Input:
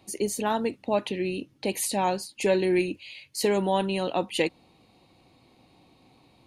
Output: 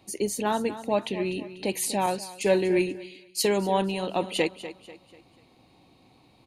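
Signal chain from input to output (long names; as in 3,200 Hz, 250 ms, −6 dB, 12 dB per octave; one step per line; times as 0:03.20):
repeating echo 245 ms, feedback 39%, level −13.5 dB
0:02.06–0:04.16: multiband upward and downward expander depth 70%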